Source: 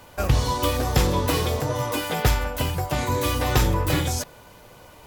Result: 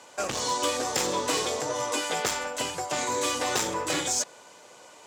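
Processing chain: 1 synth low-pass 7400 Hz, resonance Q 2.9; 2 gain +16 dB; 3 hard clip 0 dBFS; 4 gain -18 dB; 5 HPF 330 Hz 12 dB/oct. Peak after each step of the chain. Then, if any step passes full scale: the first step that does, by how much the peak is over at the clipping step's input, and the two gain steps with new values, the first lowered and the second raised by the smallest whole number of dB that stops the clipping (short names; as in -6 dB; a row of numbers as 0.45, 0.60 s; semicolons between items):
-7.0, +9.0, 0.0, -18.0, -12.5 dBFS; step 2, 9.0 dB; step 2 +7 dB, step 4 -9 dB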